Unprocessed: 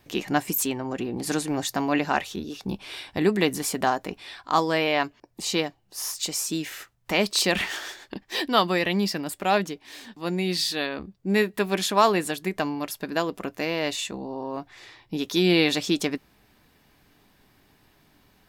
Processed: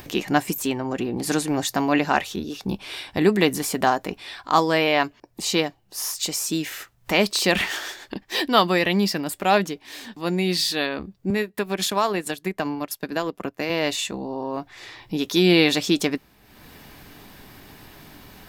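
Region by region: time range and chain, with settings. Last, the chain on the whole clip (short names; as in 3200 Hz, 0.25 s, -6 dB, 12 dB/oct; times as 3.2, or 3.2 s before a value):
11.3–13.7 compressor 2.5:1, threshold -24 dBFS + transient shaper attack +1 dB, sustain -12 dB + three-band expander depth 40%
whole clip: de-esser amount 45%; bell 14000 Hz +4.5 dB 0.21 oct; upward compressor, threshold -37 dBFS; gain +3.5 dB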